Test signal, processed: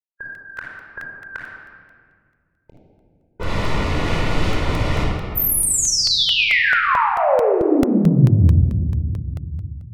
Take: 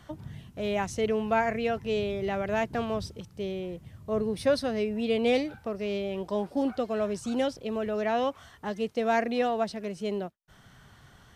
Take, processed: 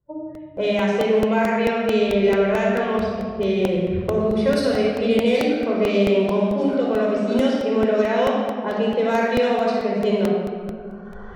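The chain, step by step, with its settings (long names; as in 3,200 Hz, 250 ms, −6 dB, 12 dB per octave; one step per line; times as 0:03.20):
camcorder AGC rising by 11 dB per second
low-pass that shuts in the quiet parts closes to 460 Hz, open at −20.5 dBFS
noise reduction from a noise print of the clip's start 26 dB
high-shelf EQ 7,400 Hz +6 dB
downward compressor, threshold −25 dBFS
rectangular room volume 3,600 cubic metres, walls mixed, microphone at 4.9 metres
regular buffer underruns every 0.22 s, samples 64, repeat, from 0:00.35
level +3 dB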